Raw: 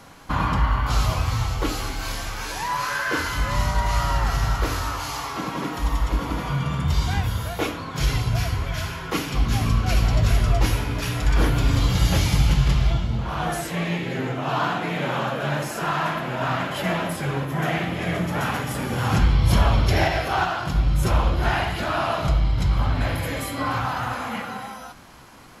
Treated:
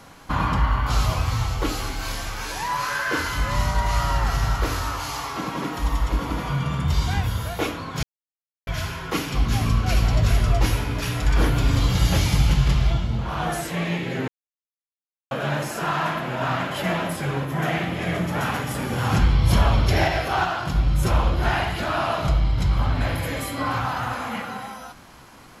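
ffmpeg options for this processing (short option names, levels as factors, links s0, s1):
-filter_complex "[0:a]asplit=5[s0][s1][s2][s3][s4];[s0]atrim=end=8.03,asetpts=PTS-STARTPTS,afade=t=out:st=8.026:d=0.004:c=hsin[s5];[s1]atrim=start=8.03:end=8.67,asetpts=PTS-STARTPTS,volume=0[s6];[s2]atrim=start=8.67:end=14.28,asetpts=PTS-STARTPTS,afade=t=in:d=0.004:c=hsin,afade=t=out:st=5.606:d=0.004:c=hsin[s7];[s3]atrim=start=14.28:end=15.31,asetpts=PTS-STARTPTS,volume=0[s8];[s4]atrim=start=15.31,asetpts=PTS-STARTPTS,afade=t=in:d=0.004:c=hsin[s9];[s5][s6][s7][s8][s9]concat=n=5:v=0:a=1"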